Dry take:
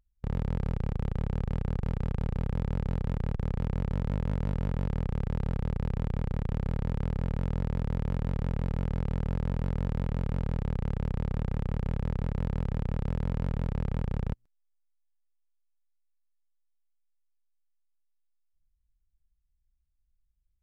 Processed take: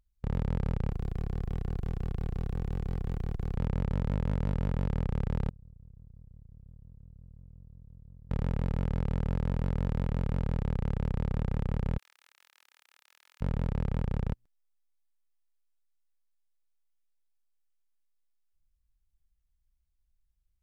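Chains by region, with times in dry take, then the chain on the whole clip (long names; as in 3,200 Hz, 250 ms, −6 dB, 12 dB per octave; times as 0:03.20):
0:00.91–0:03.57: high-shelf EQ 3,100 Hz +11.5 dB + hard clipping −26.5 dBFS
0:05.49–0:08.31: expanding power law on the bin magnitudes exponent 1.7 + gate with flip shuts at −36 dBFS, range −36 dB + envelope flattener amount 70%
0:11.98–0:13.41: high-pass filter 1,400 Hz + first difference
whole clip: no processing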